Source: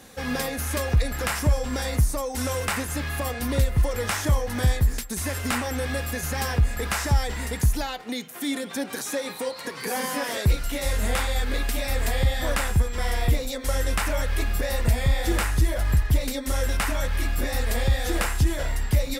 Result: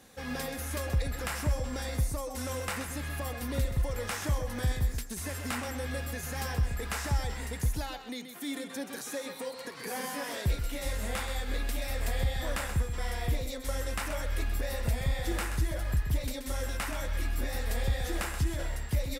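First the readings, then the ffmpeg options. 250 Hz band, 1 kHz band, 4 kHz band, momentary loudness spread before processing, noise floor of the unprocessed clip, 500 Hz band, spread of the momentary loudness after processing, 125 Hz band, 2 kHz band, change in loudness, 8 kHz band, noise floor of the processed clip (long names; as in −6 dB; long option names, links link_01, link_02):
−8.0 dB, −8.0 dB, −8.0 dB, 6 LU, −37 dBFS, −8.0 dB, 5 LU, −8.0 dB, −8.0 dB, −8.0 dB, −8.0 dB, −43 dBFS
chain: -af "aecho=1:1:129:0.355,volume=-8.5dB"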